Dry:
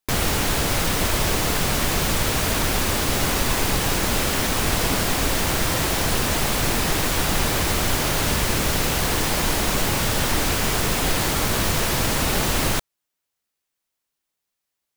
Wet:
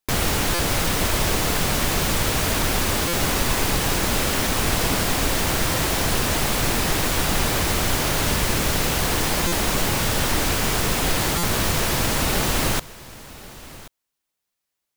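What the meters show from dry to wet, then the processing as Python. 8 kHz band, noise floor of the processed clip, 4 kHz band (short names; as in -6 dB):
0.0 dB, -81 dBFS, 0.0 dB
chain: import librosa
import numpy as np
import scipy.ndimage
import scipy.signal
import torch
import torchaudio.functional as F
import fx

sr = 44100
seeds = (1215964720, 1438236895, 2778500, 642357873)

y = x + 10.0 ** (-19.0 / 20.0) * np.pad(x, (int(1082 * sr / 1000.0), 0))[:len(x)]
y = fx.buffer_glitch(y, sr, at_s=(0.54, 3.08, 9.47, 11.38), block=256, repeats=8)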